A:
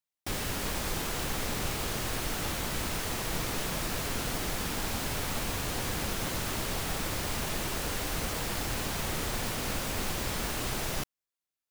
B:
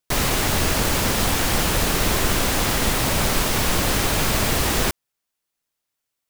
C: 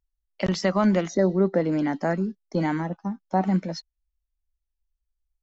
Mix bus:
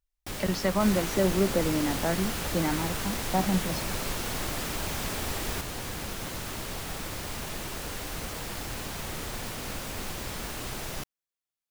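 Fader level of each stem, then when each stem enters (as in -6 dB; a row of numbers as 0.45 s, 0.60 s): -3.0 dB, -14.0 dB, -4.0 dB; 0.00 s, 0.70 s, 0.00 s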